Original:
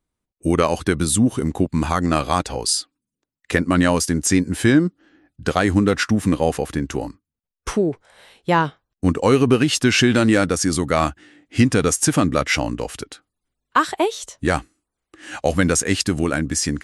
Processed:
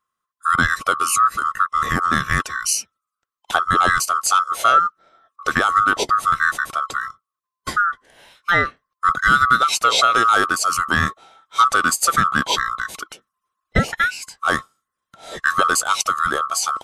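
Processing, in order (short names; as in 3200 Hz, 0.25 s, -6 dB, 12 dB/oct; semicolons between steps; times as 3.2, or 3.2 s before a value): band-swap scrambler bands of 1000 Hz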